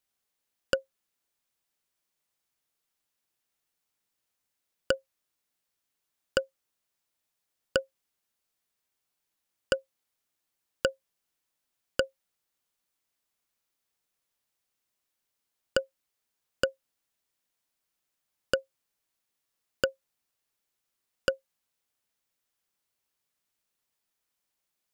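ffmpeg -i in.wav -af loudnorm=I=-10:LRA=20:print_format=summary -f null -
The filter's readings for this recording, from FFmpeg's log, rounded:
Input Integrated:    -33.5 LUFS
Input True Peak:      -9.2 dBTP
Input LRA:             3.0 LU
Input Threshold:     -44.2 LUFS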